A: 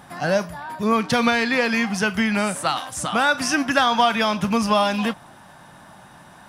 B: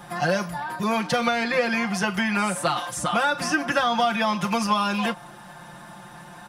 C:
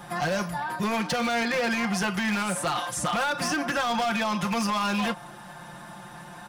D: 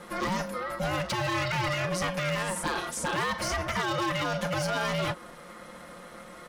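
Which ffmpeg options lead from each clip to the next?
ffmpeg -i in.wav -filter_complex "[0:a]aecho=1:1:5.7:0.92,acrossover=split=370|1600[link_01][link_02][link_03];[link_01]acompressor=threshold=-29dB:ratio=4[link_04];[link_02]acompressor=threshold=-22dB:ratio=4[link_05];[link_03]acompressor=threshold=-30dB:ratio=4[link_06];[link_04][link_05][link_06]amix=inputs=3:normalize=0" out.wav
ffmpeg -i in.wav -af "alimiter=limit=-16.5dB:level=0:latency=1:release=25,aeval=exprs='0.1*(abs(mod(val(0)/0.1+3,4)-2)-1)':channel_layout=same" out.wav
ffmpeg -i in.wav -af "aeval=exprs='val(0)*sin(2*PI*370*n/s)':channel_layout=same" out.wav

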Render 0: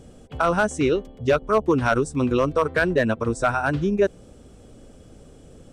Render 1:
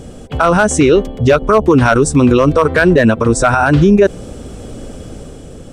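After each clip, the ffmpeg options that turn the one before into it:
ffmpeg -i in.wav -af "dynaudnorm=framelen=130:gausssize=9:maxgain=4dB,alimiter=level_in=15dB:limit=-1dB:release=50:level=0:latency=1,volume=-1dB" out.wav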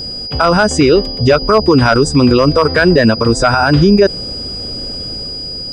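ffmpeg -i in.wav -filter_complex "[0:a]acrossover=split=8500[link_01][link_02];[link_02]acompressor=threshold=-51dB:ratio=4:attack=1:release=60[link_03];[link_01][link_03]amix=inputs=2:normalize=0,aeval=exprs='val(0)+0.0794*sin(2*PI*4900*n/s)':channel_layout=same" out.wav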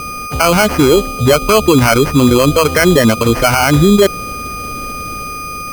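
ffmpeg -i in.wav -af "acrusher=samples=12:mix=1:aa=0.000001" out.wav

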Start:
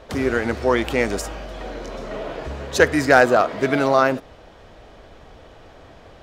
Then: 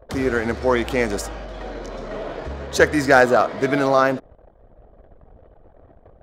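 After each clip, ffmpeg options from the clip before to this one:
ffmpeg -i in.wav -af "anlmdn=0.251,equalizer=frequency=2700:width=3.6:gain=-4" out.wav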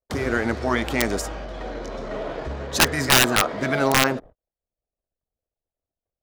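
ffmpeg -i in.wav -af "aeval=exprs='(mod(2*val(0)+1,2)-1)/2':channel_layout=same,agate=range=-42dB:threshold=-38dB:ratio=16:detection=peak,afftfilt=real='re*lt(hypot(re,im),0.794)':imag='im*lt(hypot(re,im),0.794)':win_size=1024:overlap=0.75" out.wav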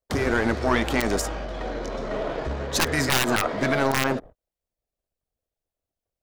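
ffmpeg -i in.wav -af "aeval=exprs='(tanh(3.16*val(0)+0.75)-tanh(0.75))/3.16':channel_layout=same,alimiter=level_in=14.5dB:limit=-1dB:release=50:level=0:latency=1,volume=-8.5dB" out.wav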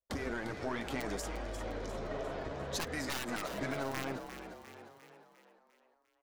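ffmpeg -i in.wav -filter_complex "[0:a]acompressor=threshold=-24dB:ratio=6,flanger=delay=3.3:depth=4.3:regen=-40:speed=0.64:shape=sinusoidal,asplit=7[link_01][link_02][link_03][link_04][link_05][link_06][link_07];[link_02]adelay=351,afreqshift=49,volume=-9.5dB[link_08];[link_03]adelay=702,afreqshift=98,volume=-15.2dB[link_09];[link_04]adelay=1053,afreqshift=147,volume=-20.9dB[link_10];[link_05]adelay=1404,afreqshift=196,volume=-26.5dB[link_11];[link_06]adelay=1755,afreqshift=245,volume=-32.2dB[link_12];[link_07]adelay=2106,afreqshift=294,volume=-37.9dB[link_13];[link_01][link_08][link_09][link_10][link_11][link_12][link_13]amix=inputs=7:normalize=0,volume=-6dB" out.wav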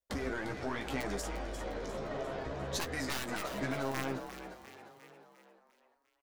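ffmpeg -i in.wav -filter_complex "[0:a]asplit=2[link_01][link_02];[link_02]adelay=15,volume=-6.5dB[link_03];[link_01][link_03]amix=inputs=2:normalize=0" out.wav

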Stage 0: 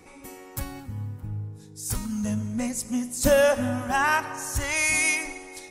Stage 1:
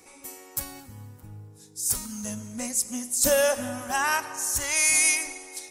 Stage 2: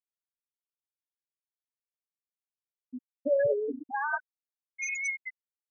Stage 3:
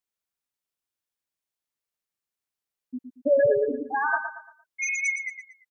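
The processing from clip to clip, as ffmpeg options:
ffmpeg -i in.wav -af "bass=frequency=250:gain=-8,treble=frequency=4000:gain=10,volume=-3dB" out.wav
ffmpeg -i in.wav -filter_complex "[0:a]adynamicsmooth=sensitivity=7:basefreq=570,asplit=7[link_01][link_02][link_03][link_04][link_05][link_06][link_07];[link_02]adelay=189,afreqshift=-140,volume=-5dB[link_08];[link_03]adelay=378,afreqshift=-280,volume=-11.7dB[link_09];[link_04]adelay=567,afreqshift=-420,volume=-18.5dB[link_10];[link_05]adelay=756,afreqshift=-560,volume=-25.2dB[link_11];[link_06]adelay=945,afreqshift=-700,volume=-32dB[link_12];[link_07]adelay=1134,afreqshift=-840,volume=-38.7dB[link_13];[link_01][link_08][link_09][link_10][link_11][link_12][link_13]amix=inputs=7:normalize=0,afftfilt=real='re*gte(hypot(re,im),0.316)':imag='im*gte(hypot(re,im),0.316)':win_size=1024:overlap=0.75,volume=-2.5dB" out.wav
ffmpeg -i in.wav -af "aecho=1:1:115|230|345|460:0.376|0.132|0.046|0.0161,volume=5.5dB" out.wav

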